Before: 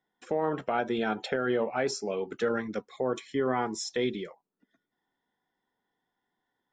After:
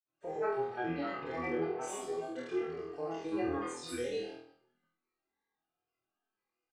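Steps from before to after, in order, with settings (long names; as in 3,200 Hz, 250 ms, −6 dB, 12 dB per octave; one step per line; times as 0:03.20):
on a send: reverse bouncing-ball delay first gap 30 ms, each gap 1.3×, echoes 5
on the sum: granular cloud, pitch spread up and down by 7 semitones
flutter between parallel walls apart 4.2 metres, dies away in 0.46 s
harmonic and percussive parts rebalanced percussive −18 dB
comb filter 2.5 ms, depth 55%
level −8.5 dB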